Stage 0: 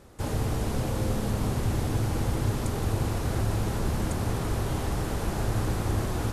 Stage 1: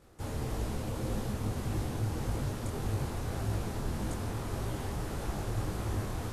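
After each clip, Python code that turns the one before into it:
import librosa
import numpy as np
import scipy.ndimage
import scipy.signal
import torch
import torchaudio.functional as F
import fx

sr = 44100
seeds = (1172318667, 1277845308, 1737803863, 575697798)

y = fx.detune_double(x, sr, cents=59)
y = y * 10.0 ** (-3.0 / 20.0)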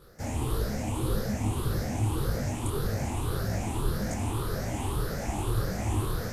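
y = fx.spec_ripple(x, sr, per_octave=0.62, drift_hz=1.8, depth_db=12)
y = fx.high_shelf(y, sr, hz=11000.0, db=5.5)
y = y * 10.0 ** (3.0 / 20.0)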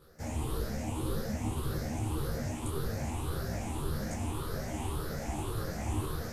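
y = fx.doubler(x, sr, ms=13.0, db=-5.5)
y = y * 10.0 ** (-5.5 / 20.0)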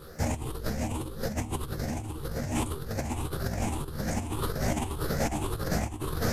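y = fx.over_compress(x, sr, threshold_db=-38.0, ratio=-0.5)
y = y * 10.0 ** (8.0 / 20.0)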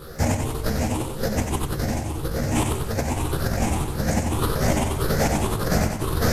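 y = fx.echo_feedback(x, sr, ms=92, feedback_pct=49, wet_db=-6)
y = y * 10.0 ** (7.0 / 20.0)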